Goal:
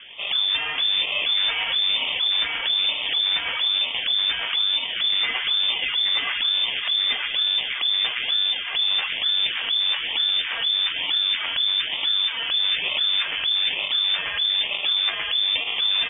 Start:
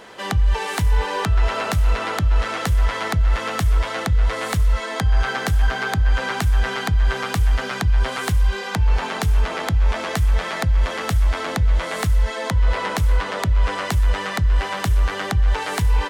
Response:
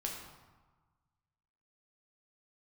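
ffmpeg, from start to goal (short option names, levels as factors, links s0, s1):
-af "acrusher=samples=15:mix=1:aa=0.000001:lfo=1:lforange=15:lforate=1.1,aeval=exprs='0.15*(abs(mod(val(0)/0.15+3,4)-2)-1)':c=same,lowpass=f=3100:t=q:w=0.5098,lowpass=f=3100:t=q:w=0.6013,lowpass=f=3100:t=q:w=0.9,lowpass=f=3100:t=q:w=2.563,afreqshift=-3600"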